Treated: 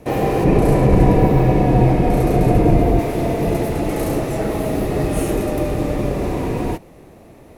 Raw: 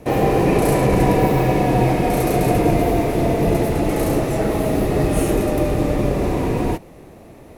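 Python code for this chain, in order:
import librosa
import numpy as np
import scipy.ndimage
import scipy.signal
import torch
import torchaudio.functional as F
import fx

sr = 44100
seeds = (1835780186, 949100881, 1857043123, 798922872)

y = fx.tilt_eq(x, sr, slope=-2.0, at=(0.44, 2.99))
y = F.gain(torch.from_numpy(y), -1.5).numpy()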